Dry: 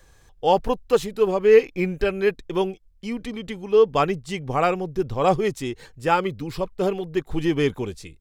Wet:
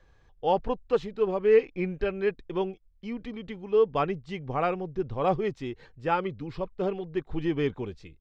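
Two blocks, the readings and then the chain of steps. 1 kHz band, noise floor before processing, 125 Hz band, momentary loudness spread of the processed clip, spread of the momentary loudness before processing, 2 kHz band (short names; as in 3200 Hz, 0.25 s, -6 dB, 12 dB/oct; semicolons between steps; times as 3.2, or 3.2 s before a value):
-6.5 dB, -55 dBFS, -5.5 dB, 14 LU, 14 LU, -7.5 dB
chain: air absorption 200 m; gain -5.5 dB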